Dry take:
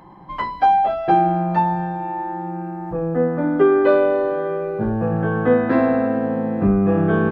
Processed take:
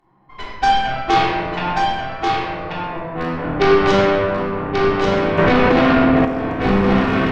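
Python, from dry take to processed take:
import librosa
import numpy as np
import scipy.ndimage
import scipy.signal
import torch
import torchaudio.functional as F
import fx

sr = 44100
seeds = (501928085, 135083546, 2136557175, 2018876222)

p1 = fx.rattle_buzz(x, sr, strikes_db=-19.0, level_db=-22.0)
p2 = fx.lowpass(p1, sr, hz=1500.0, slope=6, at=(1.3, 2.63))
p3 = fx.cheby_harmonics(p2, sr, harmonics=(6, 7, 8), levels_db=(-8, -19, -8), full_scale_db=-4.0)
p4 = p3 + fx.echo_single(p3, sr, ms=1136, db=-4.0, dry=0)
p5 = fx.room_shoebox(p4, sr, seeds[0], volume_m3=1200.0, walls='mixed', distance_m=3.4)
p6 = fx.env_flatten(p5, sr, amount_pct=100, at=(5.38, 6.25))
y = p6 * librosa.db_to_amplitude(-7.0)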